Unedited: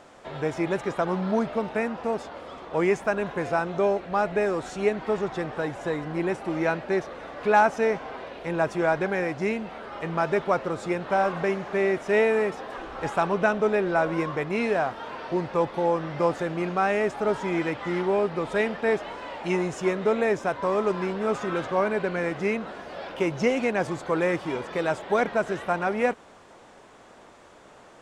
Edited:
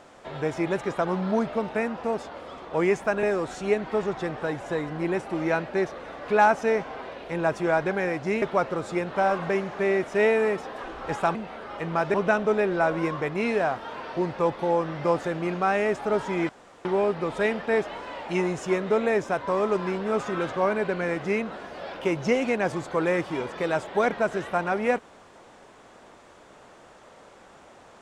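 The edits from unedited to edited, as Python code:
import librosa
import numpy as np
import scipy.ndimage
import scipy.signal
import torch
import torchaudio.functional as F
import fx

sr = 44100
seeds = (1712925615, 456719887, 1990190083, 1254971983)

y = fx.edit(x, sr, fx.cut(start_s=3.23, length_s=1.15),
    fx.move(start_s=9.57, length_s=0.79, to_s=13.29),
    fx.room_tone_fill(start_s=17.64, length_s=0.36), tone=tone)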